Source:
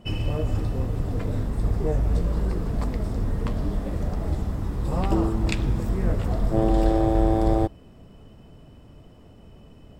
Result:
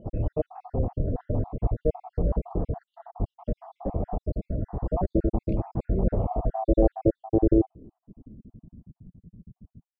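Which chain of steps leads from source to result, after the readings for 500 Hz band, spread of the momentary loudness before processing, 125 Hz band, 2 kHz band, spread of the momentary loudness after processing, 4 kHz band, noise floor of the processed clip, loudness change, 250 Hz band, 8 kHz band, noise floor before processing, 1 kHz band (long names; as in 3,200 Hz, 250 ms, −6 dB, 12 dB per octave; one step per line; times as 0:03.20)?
0.0 dB, 7 LU, −4.0 dB, below −20 dB, 11 LU, below −30 dB, below −85 dBFS, −2.5 dB, −1.5 dB, below −30 dB, −49 dBFS, −4.0 dB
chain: time-frequency cells dropped at random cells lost 61%
high-shelf EQ 5,100 Hz +3.5 dB
low-pass filter sweep 710 Hz → 180 Hz, 0:06.46–0:09.00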